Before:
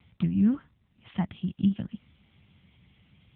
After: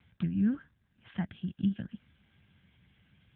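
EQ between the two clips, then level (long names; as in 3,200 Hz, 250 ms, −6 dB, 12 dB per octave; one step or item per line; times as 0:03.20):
dynamic equaliser 1,000 Hz, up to −6 dB, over −51 dBFS, Q 2
parametric band 1,600 Hz +14 dB 0.23 octaves
−5.0 dB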